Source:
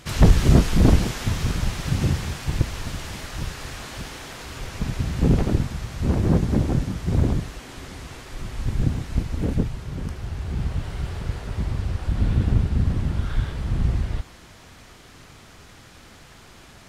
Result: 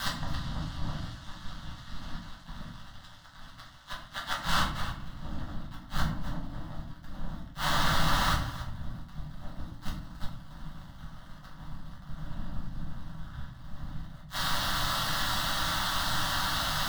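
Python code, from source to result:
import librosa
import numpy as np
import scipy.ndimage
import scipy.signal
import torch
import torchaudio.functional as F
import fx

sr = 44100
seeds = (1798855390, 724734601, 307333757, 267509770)

p1 = fx.wiener(x, sr, points=9)
p2 = fx.quant_dither(p1, sr, seeds[0], bits=8, dither='triangular')
p3 = fx.curve_eq(p2, sr, hz=(110.0, 3800.0, 7100.0), db=(0, 7, -5))
p4 = p3 * np.sin(2.0 * np.pi * 96.0 * np.arange(len(p3)) / sr)
p5 = fx.rider(p4, sr, range_db=4, speed_s=2.0)
p6 = p4 + F.gain(torch.from_numpy(p5), 1.0).numpy()
p7 = fx.gate_flip(p6, sr, shuts_db=-16.0, range_db=-31)
p8 = p7 + fx.echo_single(p7, sr, ms=274, db=-18.0, dry=0)
p9 = fx.leveller(p8, sr, passes=3)
p10 = 10.0 ** (-20.5 / 20.0) * np.tanh(p9 / 10.0 ** (-20.5 / 20.0))
p11 = fx.peak_eq(p10, sr, hz=2800.0, db=13.0, octaves=2.0)
p12 = fx.fixed_phaser(p11, sr, hz=1000.0, stages=4)
p13 = fx.room_shoebox(p12, sr, seeds[1], volume_m3=63.0, walls='mixed', distance_m=1.1)
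y = F.gain(torch.from_numpy(p13), -7.5).numpy()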